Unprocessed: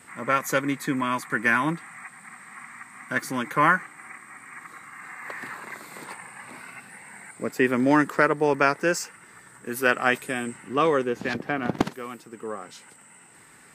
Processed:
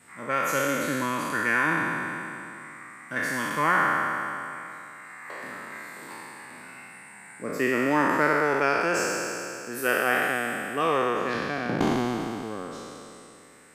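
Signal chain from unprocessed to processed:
peak hold with a decay on every bin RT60 2.87 s
level −6.5 dB

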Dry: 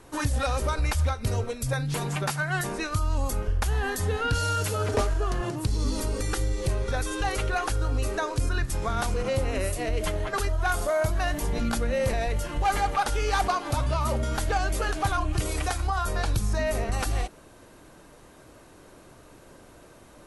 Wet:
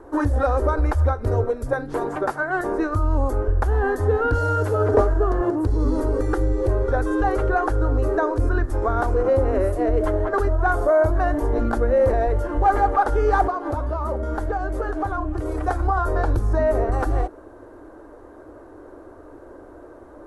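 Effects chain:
drawn EQ curve 100 Hz 0 dB, 150 Hz −19 dB, 310 Hz +7 dB, 1,600 Hz −2 dB, 2,500 Hz −19 dB
0:13.46–0:15.68: downward compressor, threshold −27 dBFS, peak gain reduction 8 dB
level +5.5 dB

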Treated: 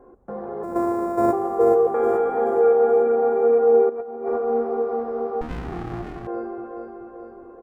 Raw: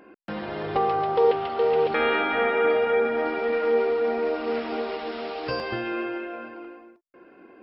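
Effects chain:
0:00.63–0:01.33: samples sorted by size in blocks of 128 samples
background noise brown −51 dBFS
notch comb filter 310 Hz
repeating echo 428 ms, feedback 53%, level −5 dB
0:03.89–0:04.40: compressor whose output falls as the input rises −30 dBFS, ratio −0.5
drawn EQ curve 160 Hz 0 dB, 310 Hz +11 dB, 530 Hz +12 dB, 1,200 Hz +6 dB, 2,800 Hz −24 dB, 4,500 Hz −23 dB, 7,000 Hz −10 dB
0:05.41–0:06.27: windowed peak hold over 65 samples
level −7 dB

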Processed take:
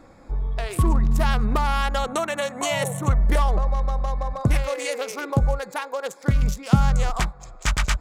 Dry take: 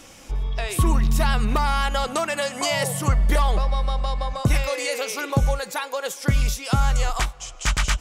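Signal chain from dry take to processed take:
adaptive Wiener filter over 15 samples
0:01.98–0:03.21: Butterworth band-reject 4,900 Hz, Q 4.3
0:06.42–0:07.57: parametric band 180 Hz +9.5 dB 0.88 octaves

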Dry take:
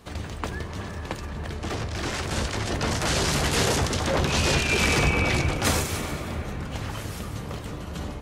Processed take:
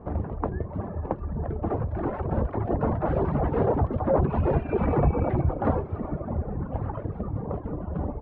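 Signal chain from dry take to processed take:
reverb reduction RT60 2 s
in parallel at −1.5 dB: downward compressor, threshold −33 dBFS, peak gain reduction 13 dB
on the sum: transistor ladder low-pass 1,100 Hz, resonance 20%
level +7 dB

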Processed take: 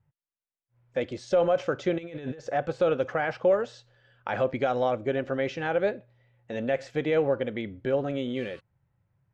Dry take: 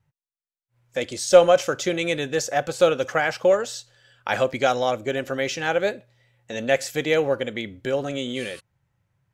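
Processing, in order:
brickwall limiter −12.5 dBFS, peak gain reduction 11 dB
0:01.98–0:02.50: compressor whose output falls as the input rises −36 dBFS, ratio −1
head-to-tape spacing loss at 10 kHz 32 dB

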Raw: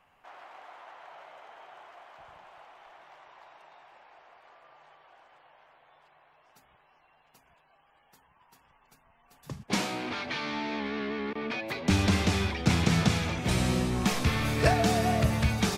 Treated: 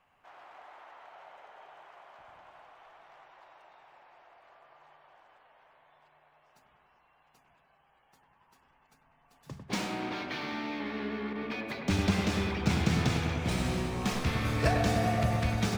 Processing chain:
running median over 3 samples
on a send: delay with a low-pass on its return 99 ms, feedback 76%, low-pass 2,200 Hz, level −6 dB
on the sum: level −4.5 dB

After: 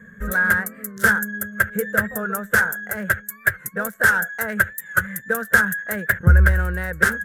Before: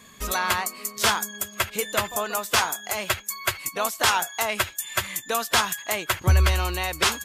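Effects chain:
adaptive Wiener filter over 9 samples
drawn EQ curve 120 Hz 0 dB, 200 Hz +9 dB, 300 Hz −13 dB, 490 Hz +3 dB, 720 Hz −13 dB, 1,100 Hz −15 dB, 1,600 Hz +11 dB, 2,500 Hz −20 dB, 4,300 Hz −18 dB, 12,000 Hz −1 dB
wow of a warped record 45 rpm, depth 100 cents
level +5 dB

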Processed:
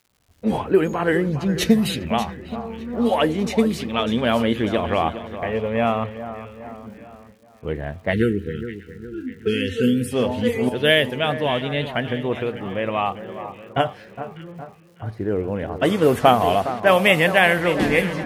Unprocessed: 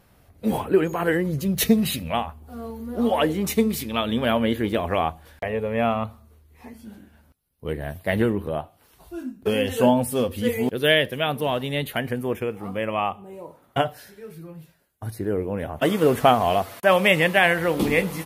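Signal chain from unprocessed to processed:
on a send: echo with a time of its own for lows and highs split 1,800 Hz, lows 412 ms, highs 598 ms, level −12 dB
on the sum: downward expander −45 dBFS
low-pass that shuts in the quiet parts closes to 1,600 Hz, open at −14.5 dBFS
time-frequency box erased 0:08.13–0:10.12, 510–1,300 Hz
surface crackle 270 per second −49 dBFS
level +2 dB

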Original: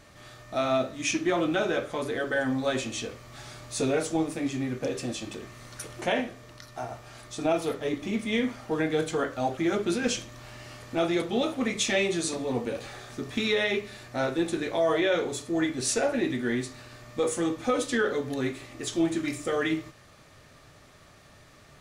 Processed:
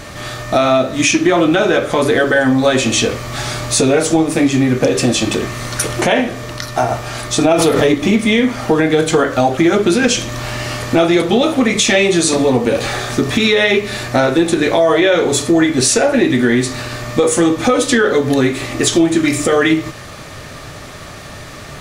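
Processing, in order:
downward compressor 4 to 1, threshold −32 dBFS, peak gain reduction 10 dB
boost into a limiter +23.5 dB
0:07.51–0:07.99: background raised ahead of every attack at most 32 dB per second
level −1.5 dB

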